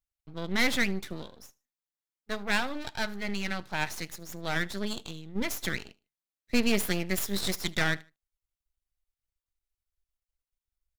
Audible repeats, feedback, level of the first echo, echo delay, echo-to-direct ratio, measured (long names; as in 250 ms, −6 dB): 2, 30%, −24.0 dB, 76 ms, −23.5 dB